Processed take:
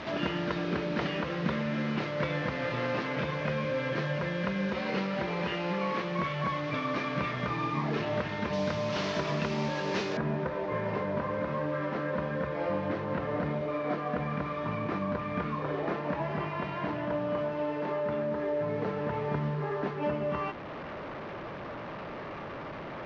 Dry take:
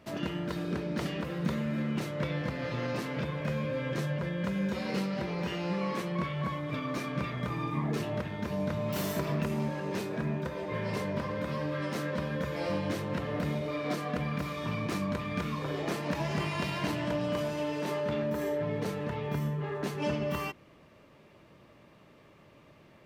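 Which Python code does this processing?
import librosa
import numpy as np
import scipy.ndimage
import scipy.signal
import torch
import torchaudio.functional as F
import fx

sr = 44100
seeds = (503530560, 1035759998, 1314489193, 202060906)

y = fx.delta_mod(x, sr, bps=32000, step_db=-38.0)
y = fx.low_shelf(y, sr, hz=370.0, db=-8.5)
y = fx.rider(y, sr, range_db=3, speed_s=0.5)
y = fx.lowpass(y, sr, hz=fx.steps((0.0, 2900.0), (8.53, 5500.0), (10.17, 1500.0)), slope=12)
y = F.gain(torch.from_numpy(y), 6.0).numpy()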